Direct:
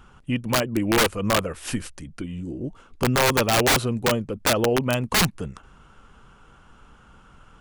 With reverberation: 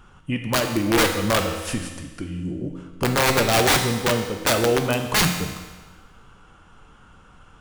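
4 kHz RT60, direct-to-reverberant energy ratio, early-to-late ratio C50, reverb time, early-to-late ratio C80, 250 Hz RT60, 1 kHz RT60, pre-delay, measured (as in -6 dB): 1.3 s, 3.5 dB, 6.5 dB, 1.3 s, 8.0 dB, 1.3 s, 1.3 s, 4 ms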